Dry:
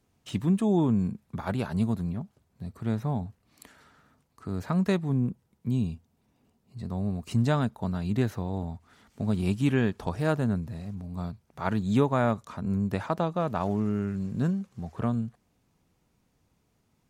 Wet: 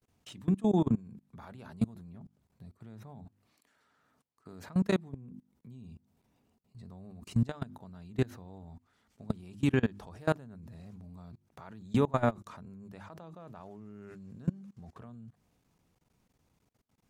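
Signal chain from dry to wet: hum notches 50/100/150/200/250/300/350 Hz; 3.25–4.68 s: bass shelf 130 Hz -11.5 dB; level held to a coarse grid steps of 24 dB

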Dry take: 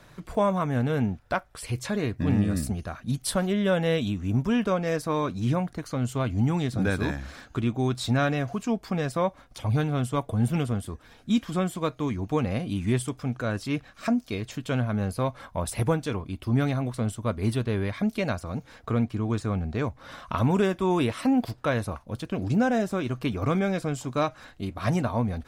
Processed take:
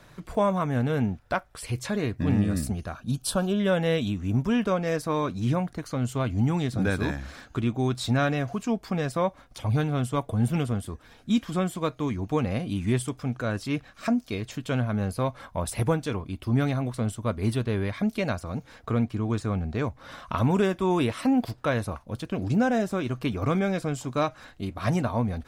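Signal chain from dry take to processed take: 2.94–3.60 s: Butterworth band-stop 2 kHz, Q 2.8

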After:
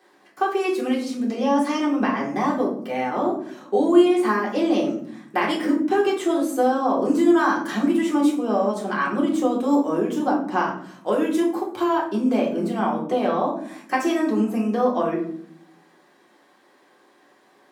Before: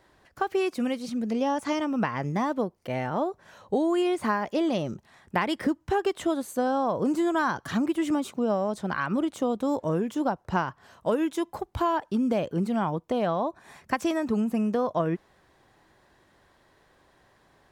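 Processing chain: high-pass 220 Hz 24 dB/octave; hum notches 60/120/180/240/300/360 Hz; reverberation RT60 0.60 s, pre-delay 3 ms, DRR -3.5 dB

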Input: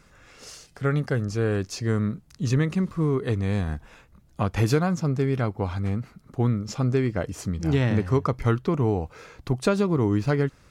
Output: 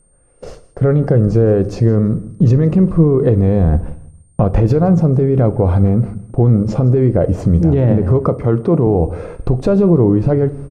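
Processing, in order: peaking EQ 550 Hz +13 dB 1.5 oct; gate -40 dBFS, range -22 dB; whistle 8.7 kHz -48 dBFS; tilt EQ -4 dB/octave; compression, threshold -10 dBFS, peak gain reduction 8 dB; peak limiter -10.5 dBFS, peak gain reduction 8.5 dB; 8.26–8.87 s: high-pass 130 Hz; feedback delay 162 ms, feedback 27%, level -20.5 dB; on a send at -12 dB: reverberation RT60 0.50 s, pre-delay 6 ms; on the sum: trim +5.5 dB

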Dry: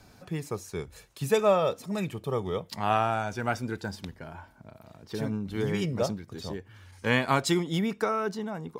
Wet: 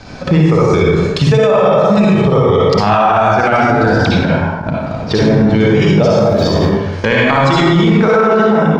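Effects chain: 7.75–8.36 s: median filter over 9 samples; low-pass 5.8 kHz 24 dB/octave; de-hum 58.68 Hz, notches 8; transient shaper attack +10 dB, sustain -3 dB; 3.88–4.31 s: phase dispersion lows, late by 40 ms, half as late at 2.1 kHz; 6.04–6.59 s: small samples zeroed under -57 dBFS; reverberation RT60 1.1 s, pre-delay 47 ms, DRR -5 dB; loudness maximiser +21.5 dB; endings held to a fixed fall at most 150 dB/s; trim -2 dB

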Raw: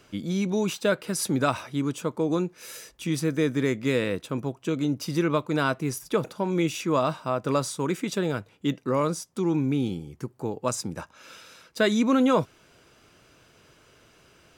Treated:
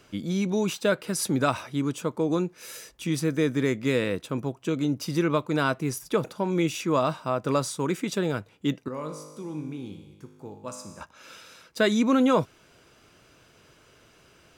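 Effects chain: 8.88–11.01 s: feedback comb 51 Hz, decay 1.3 s, harmonics all, mix 80%

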